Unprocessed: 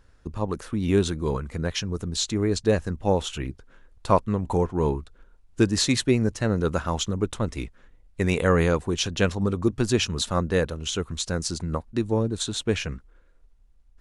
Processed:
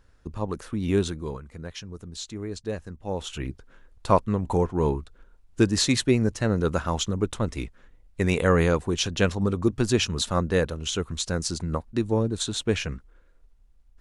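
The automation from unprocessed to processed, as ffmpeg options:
ffmpeg -i in.wav -af "volume=8dB,afade=type=out:start_time=1:duration=0.4:silence=0.398107,afade=type=in:start_time=3.08:duration=0.41:silence=0.316228" out.wav

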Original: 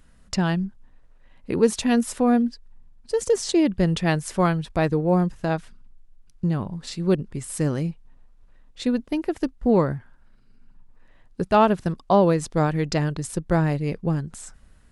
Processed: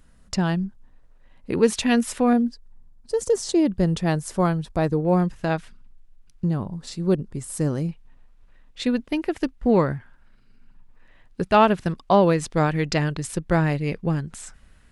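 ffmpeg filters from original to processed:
ffmpeg -i in.wav -af "asetnsamples=nb_out_samples=441:pad=0,asendcmd='1.53 equalizer g 5;2.33 equalizer g -6;5.05 equalizer g 3.5;6.45 equalizer g -5.5;7.89 equalizer g 5.5',equalizer=frequency=2400:width_type=o:width=1.6:gain=-2" out.wav

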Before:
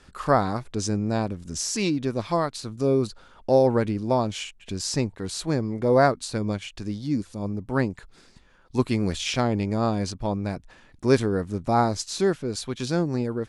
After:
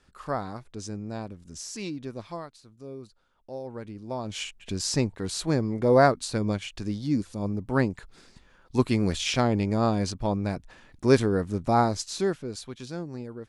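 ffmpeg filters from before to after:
ffmpeg -i in.wav -af "volume=9dB,afade=type=out:start_time=2.17:duration=0.42:silence=0.354813,afade=type=in:start_time=3.64:duration=0.59:silence=0.354813,afade=type=in:start_time=4.23:duration=0.19:silence=0.316228,afade=type=out:start_time=11.64:duration=1.23:silence=0.281838" out.wav

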